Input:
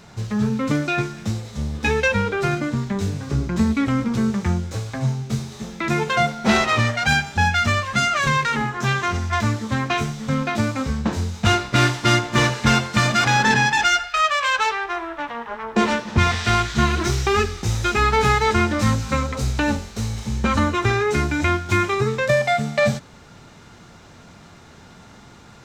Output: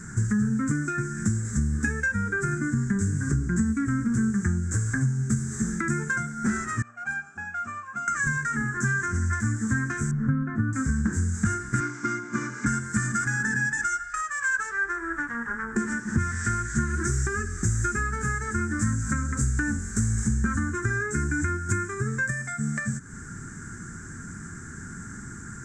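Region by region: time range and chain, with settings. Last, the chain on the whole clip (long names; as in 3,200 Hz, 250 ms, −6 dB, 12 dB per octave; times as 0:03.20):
0:06.82–0:08.08: formant filter a + hard clipping −23 dBFS
0:10.11–0:10.73: low-pass filter 1,200 Hz + comb filter 7.5 ms, depth 67%
0:11.80–0:12.66: loudspeaker in its box 220–5,900 Hz, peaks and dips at 270 Hz +5 dB, 590 Hz +3 dB, 1,100 Hz +4 dB, 2,200 Hz +6 dB + notch filter 1,800 Hz, Q 5
whole clip: parametric band 1,600 Hz +4 dB 0.62 octaves; downward compressor 12 to 1, threshold −28 dBFS; drawn EQ curve 230 Hz 0 dB, 370 Hz −5 dB, 600 Hz −26 dB, 940 Hz −18 dB, 1,600 Hz +2 dB, 2,700 Hz −26 dB, 4,000 Hz −26 dB, 7,700 Hz +11 dB, 12,000 Hz −12 dB; level +7.5 dB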